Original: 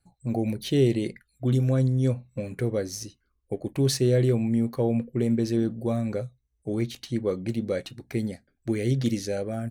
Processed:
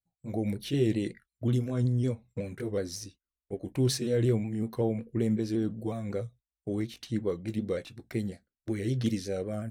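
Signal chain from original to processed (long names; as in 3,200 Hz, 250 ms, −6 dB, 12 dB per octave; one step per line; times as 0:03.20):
pitch shifter swept by a sawtooth −1.5 semitones, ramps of 185 ms
noise gate −49 dBFS, range −21 dB
level −3 dB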